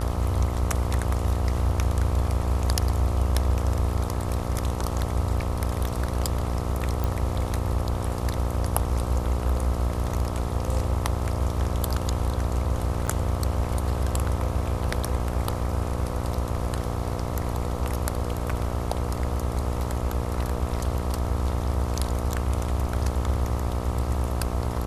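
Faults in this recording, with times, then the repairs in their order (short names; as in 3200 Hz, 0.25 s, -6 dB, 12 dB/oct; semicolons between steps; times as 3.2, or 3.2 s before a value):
buzz 60 Hz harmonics 22 -30 dBFS
7.04 pop
13.07–13.08 gap 8.1 ms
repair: de-click; de-hum 60 Hz, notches 22; interpolate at 13.07, 8.1 ms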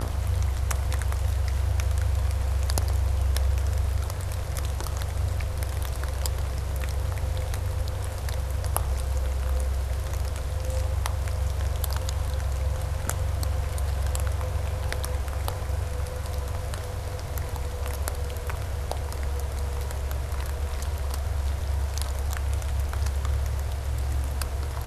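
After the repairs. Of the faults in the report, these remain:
none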